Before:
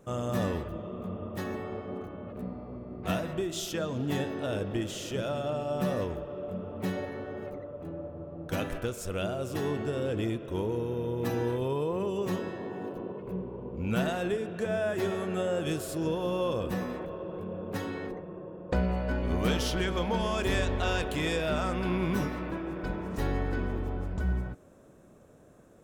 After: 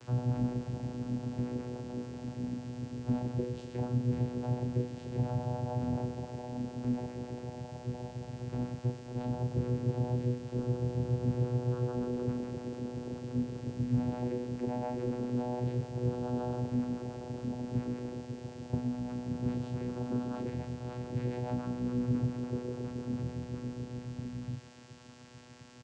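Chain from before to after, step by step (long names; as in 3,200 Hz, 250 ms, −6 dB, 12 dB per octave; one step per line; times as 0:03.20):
spectral tilt −3 dB per octave
downward compressor 4 to 1, threshold −23 dBFS, peak gain reduction 9 dB
two-band tremolo in antiphase 7.1 Hz, depth 70%, crossover 490 Hz
background noise white −42 dBFS
channel vocoder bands 8, saw 123 Hz
double-tracking delay 37 ms −7.5 dB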